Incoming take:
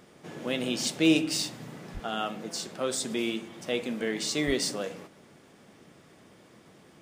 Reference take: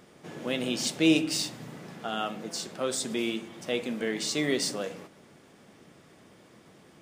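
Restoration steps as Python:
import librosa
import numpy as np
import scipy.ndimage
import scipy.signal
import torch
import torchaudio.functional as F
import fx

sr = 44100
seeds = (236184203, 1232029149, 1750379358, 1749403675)

y = fx.fix_declip(x, sr, threshold_db=-13.0)
y = fx.highpass(y, sr, hz=140.0, slope=24, at=(1.93, 2.05), fade=0.02)
y = fx.highpass(y, sr, hz=140.0, slope=24, at=(4.46, 4.58), fade=0.02)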